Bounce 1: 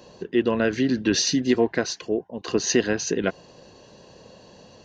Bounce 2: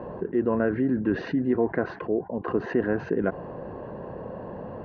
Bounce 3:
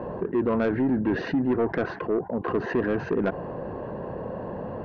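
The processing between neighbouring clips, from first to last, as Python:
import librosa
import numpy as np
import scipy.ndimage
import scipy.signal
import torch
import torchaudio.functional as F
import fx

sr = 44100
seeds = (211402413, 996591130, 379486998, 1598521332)

y1 = scipy.signal.sosfilt(scipy.signal.butter(4, 1500.0, 'lowpass', fs=sr, output='sos'), x)
y1 = fx.env_flatten(y1, sr, amount_pct=50)
y1 = F.gain(torch.from_numpy(y1), -4.5).numpy()
y2 = 10.0 ** (-21.0 / 20.0) * np.tanh(y1 / 10.0 ** (-21.0 / 20.0))
y2 = F.gain(torch.from_numpy(y2), 3.5).numpy()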